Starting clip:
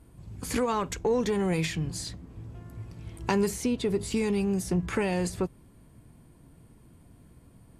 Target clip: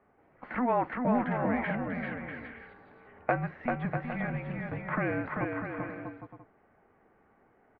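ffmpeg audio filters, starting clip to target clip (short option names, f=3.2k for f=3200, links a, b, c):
-af "highpass=f=530:t=q:w=0.5412,highpass=f=530:t=q:w=1.307,lowpass=f=2.3k:t=q:w=0.5176,lowpass=f=2.3k:t=q:w=0.7071,lowpass=f=2.3k:t=q:w=1.932,afreqshift=-250,aecho=1:1:390|643.5|808.3|915.4|985:0.631|0.398|0.251|0.158|0.1,volume=3dB"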